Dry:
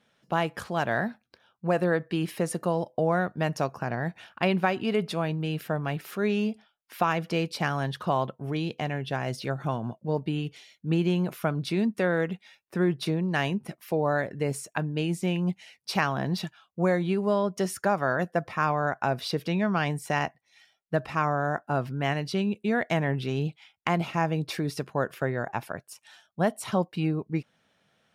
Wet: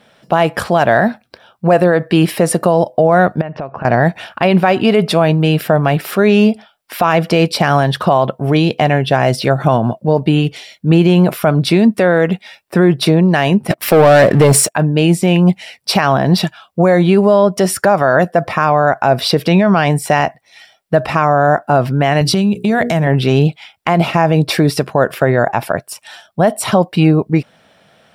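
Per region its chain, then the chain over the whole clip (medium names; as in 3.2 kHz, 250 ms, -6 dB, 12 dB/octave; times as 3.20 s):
3.41–3.85 s: low-pass 2.8 kHz 24 dB/octave + compression 16:1, threshold -38 dBFS
13.70–14.75 s: high-pass 57 Hz + waveshaping leveller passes 3
22.21–23.07 s: tone controls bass +8 dB, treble +9 dB + hum notches 60/120/180/240/300/360/420/480 Hz + compression, threshold -27 dBFS
whole clip: peaking EQ 650 Hz +5.5 dB 0.66 oct; band-stop 6.5 kHz, Q 10; loudness maximiser +18 dB; trim -1 dB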